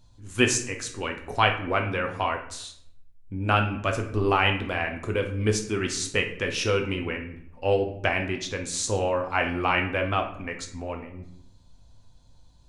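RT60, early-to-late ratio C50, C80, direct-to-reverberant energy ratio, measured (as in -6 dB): 0.75 s, 9.0 dB, 12.5 dB, 3.0 dB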